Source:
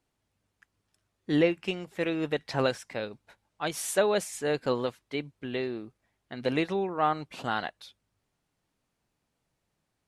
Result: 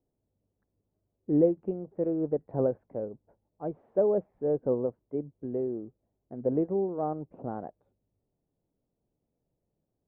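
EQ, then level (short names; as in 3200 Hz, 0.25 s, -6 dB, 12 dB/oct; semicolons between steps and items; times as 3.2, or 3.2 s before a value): ladder low-pass 700 Hz, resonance 25%; +5.5 dB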